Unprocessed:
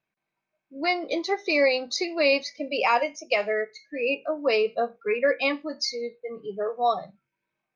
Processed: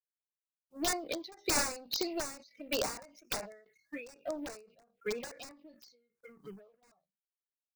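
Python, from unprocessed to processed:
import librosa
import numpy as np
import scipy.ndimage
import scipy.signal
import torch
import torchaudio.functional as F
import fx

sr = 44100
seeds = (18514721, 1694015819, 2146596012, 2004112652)

y = fx.law_mismatch(x, sr, coded='A')
y = fx.dynamic_eq(y, sr, hz=430.0, q=2.2, threshold_db=-37.0, ratio=4.0, max_db=-5)
y = (np.mod(10.0 ** (19.5 / 20.0) * y + 1.0, 2.0) - 1.0) / 10.0 ** (19.5 / 20.0)
y = fx.env_phaser(y, sr, low_hz=290.0, high_hz=3200.0, full_db=-24.5)
y = fx.end_taper(y, sr, db_per_s=100.0)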